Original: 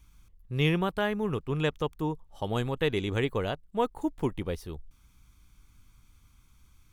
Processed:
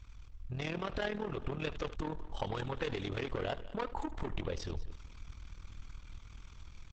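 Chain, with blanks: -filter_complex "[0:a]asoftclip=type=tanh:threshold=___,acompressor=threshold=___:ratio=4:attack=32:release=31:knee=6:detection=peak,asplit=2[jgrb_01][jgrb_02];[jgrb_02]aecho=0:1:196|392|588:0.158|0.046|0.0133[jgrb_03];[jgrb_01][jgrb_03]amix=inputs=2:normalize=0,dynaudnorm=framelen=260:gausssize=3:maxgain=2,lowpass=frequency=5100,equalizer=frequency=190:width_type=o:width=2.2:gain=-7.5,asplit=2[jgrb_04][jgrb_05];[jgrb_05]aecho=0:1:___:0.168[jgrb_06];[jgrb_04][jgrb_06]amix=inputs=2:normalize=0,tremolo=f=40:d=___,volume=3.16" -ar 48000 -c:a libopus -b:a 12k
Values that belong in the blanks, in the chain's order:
0.0398, 0.00316, 77, 0.75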